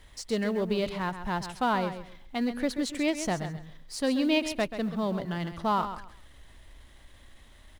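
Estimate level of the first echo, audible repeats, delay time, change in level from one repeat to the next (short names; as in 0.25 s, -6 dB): -10.5 dB, 2, 0.133 s, -13.0 dB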